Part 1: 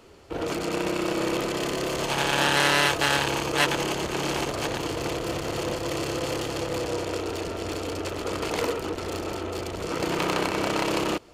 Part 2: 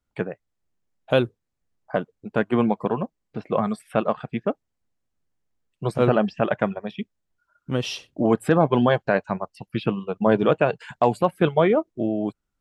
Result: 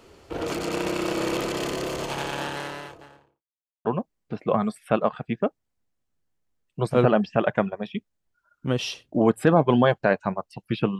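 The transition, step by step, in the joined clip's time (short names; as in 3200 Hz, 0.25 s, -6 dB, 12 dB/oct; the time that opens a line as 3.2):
part 1
1.45–3.43 studio fade out
3.43–3.85 mute
3.85 switch to part 2 from 2.89 s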